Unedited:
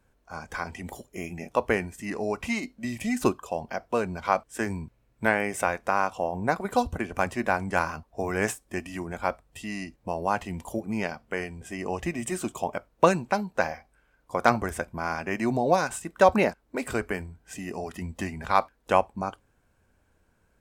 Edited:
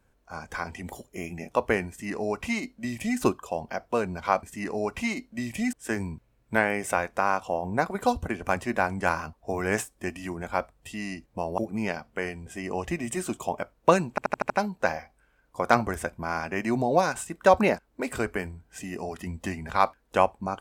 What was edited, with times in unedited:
1.89–3.19 copy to 4.43
10.28–10.73 cut
13.25 stutter 0.08 s, 6 plays

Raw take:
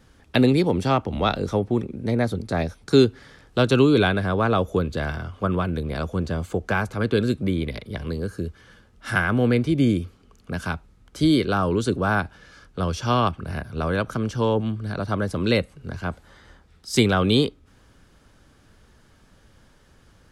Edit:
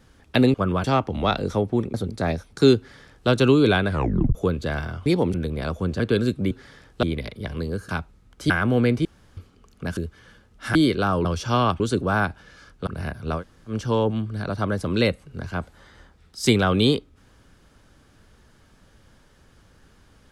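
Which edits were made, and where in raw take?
0.54–0.82 swap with 5.37–5.67
1.92–2.25 cut
3.08–3.6 copy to 7.53
4.2 tape stop 0.46 s
6.33–7.02 cut
8.39–9.17 swap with 10.64–11.25
9.72–10.04 room tone
12.82–13.37 move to 11.75
13.89–14.21 room tone, crossfade 0.10 s

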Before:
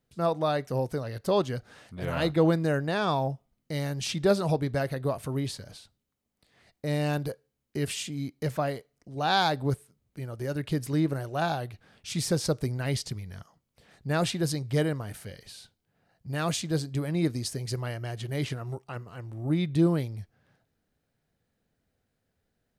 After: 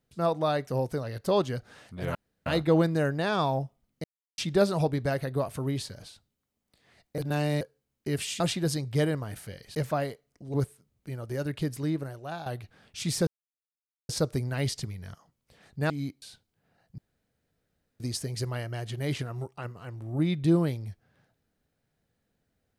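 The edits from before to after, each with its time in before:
2.15 insert room tone 0.31 s
3.73–4.07 mute
6.87–7.3 reverse
8.09–8.41 swap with 14.18–15.53
9.2–9.64 cut
10.51–11.56 fade out, to -12 dB
12.37 insert silence 0.82 s
16.29–17.31 room tone

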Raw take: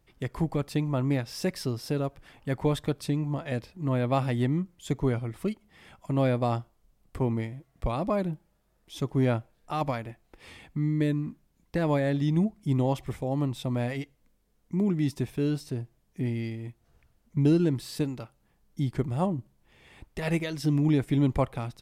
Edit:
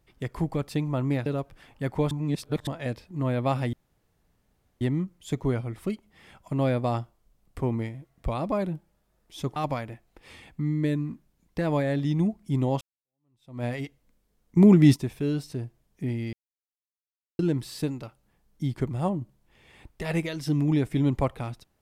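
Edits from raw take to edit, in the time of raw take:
1.26–1.92 cut
2.77–3.33 reverse
4.39 insert room tone 1.08 s
9.14–9.73 cut
12.98–13.81 fade in exponential
14.74–15.13 gain +10.5 dB
16.5–17.56 mute

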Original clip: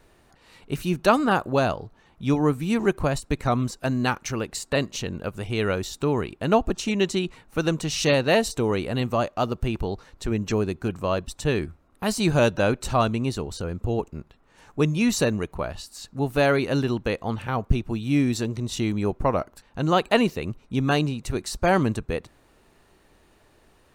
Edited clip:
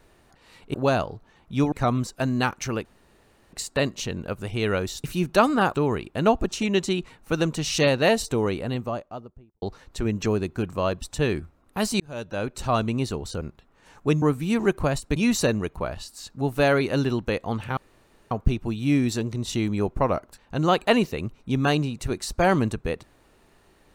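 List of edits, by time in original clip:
0.74–1.44 move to 6
2.42–3.36 move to 14.94
4.49 insert room tone 0.68 s
8.54–9.88 studio fade out
12.26–13.17 fade in
13.67–14.13 cut
17.55 insert room tone 0.54 s

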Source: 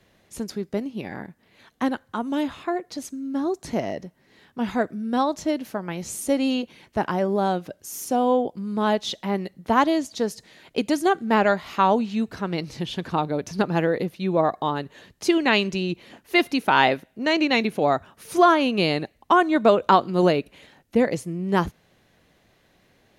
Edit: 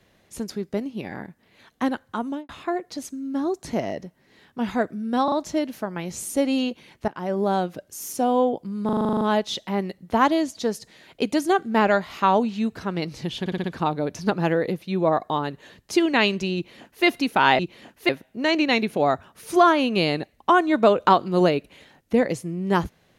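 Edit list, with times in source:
2.24–2.49 studio fade out
5.24 stutter 0.04 s, 3 plays
7–7.32 fade in, from -20.5 dB
8.77 stutter 0.04 s, 10 plays
12.96 stutter 0.06 s, 5 plays
15.87–16.37 copy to 16.91

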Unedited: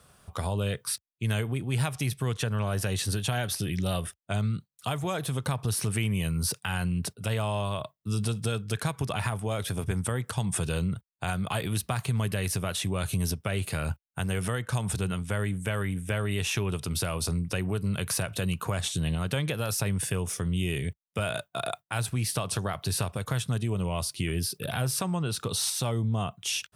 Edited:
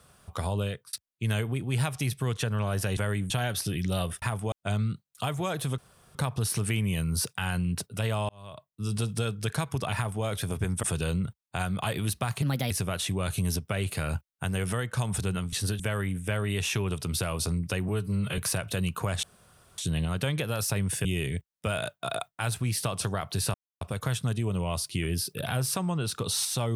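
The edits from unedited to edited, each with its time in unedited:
0.6–0.93 fade out linear
2.97–3.24 swap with 15.28–15.61
5.42 insert room tone 0.37 s
7.56–8.31 fade in
9.22–9.52 copy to 4.16
10.1–10.51 cut
12.1–12.46 speed 126%
17.7–18.03 stretch 1.5×
18.88 insert room tone 0.55 s
20.15–20.57 cut
23.06 insert silence 0.27 s

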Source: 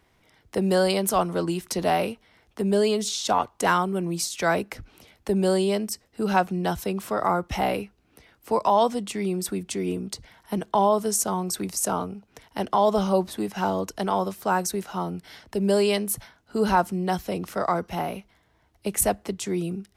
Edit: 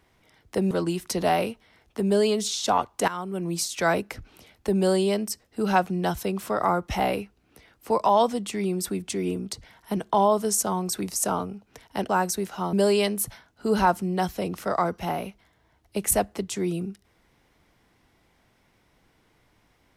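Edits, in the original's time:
0.71–1.32 cut
3.69–4.15 fade in, from -17 dB
12.7–14.45 cut
15.09–15.63 cut

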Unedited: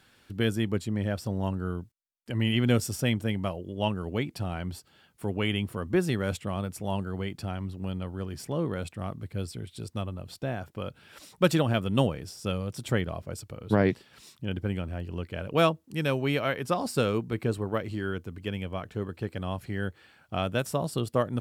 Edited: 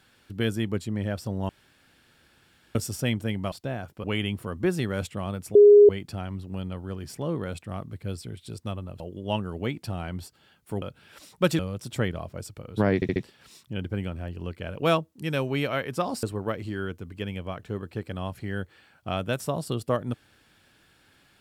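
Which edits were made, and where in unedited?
1.49–2.75 room tone
3.52–5.34 swap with 10.3–10.82
6.85–7.19 bleep 412 Hz -9 dBFS
11.59–12.52 cut
13.88 stutter 0.07 s, 4 plays
16.95–17.49 cut

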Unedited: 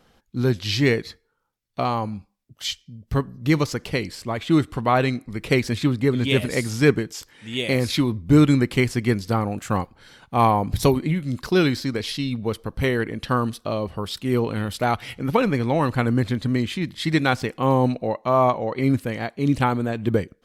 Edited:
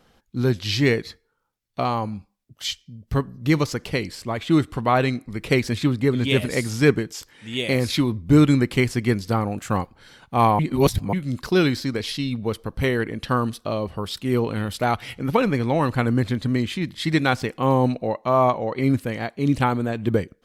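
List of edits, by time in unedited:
10.59–11.13 reverse

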